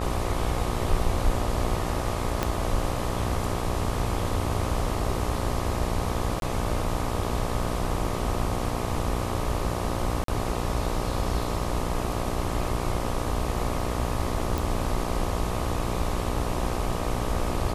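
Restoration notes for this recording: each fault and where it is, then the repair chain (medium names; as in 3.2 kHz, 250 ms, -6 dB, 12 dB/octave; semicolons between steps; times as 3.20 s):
buzz 60 Hz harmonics 21 -31 dBFS
2.43 s: pop -10 dBFS
6.40–6.42 s: dropout 22 ms
10.24–10.28 s: dropout 43 ms
14.58 s: pop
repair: de-click; de-hum 60 Hz, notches 21; interpolate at 6.40 s, 22 ms; interpolate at 10.24 s, 43 ms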